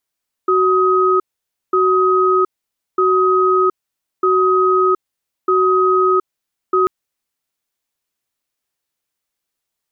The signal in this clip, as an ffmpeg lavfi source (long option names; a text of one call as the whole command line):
ffmpeg -f lavfi -i "aevalsrc='0.211*(sin(2*PI*373*t)+sin(2*PI*1260*t))*clip(min(mod(t,1.25),0.72-mod(t,1.25))/0.005,0,1)':duration=6.39:sample_rate=44100" out.wav